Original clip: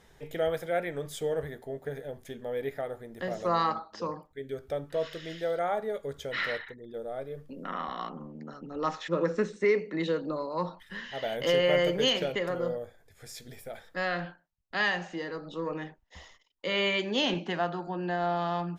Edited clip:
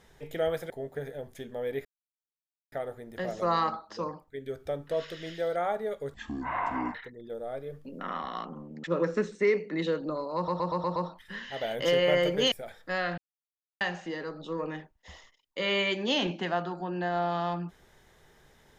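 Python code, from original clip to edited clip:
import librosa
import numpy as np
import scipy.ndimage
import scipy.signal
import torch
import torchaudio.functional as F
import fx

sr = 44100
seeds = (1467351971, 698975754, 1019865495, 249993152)

y = fx.edit(x, sr, fx.cut(start_s=0.7, length_s=0.9),
    fx.insert_silence(at_s=2.75, length_s=0.87),
    fx.speed_span(start_s=6.17, length_s=0.42, speed=0.52),
    fx.cut(start_s=8.48, length_s=0.57),
    fx.stutter(start_s=10.57, slice_s=0.12, count=6),
    fx.cut(start_s=12.13, length_s=1.46),
    fx.silence(start_s=14.25, length_s=0.63), tone=tone)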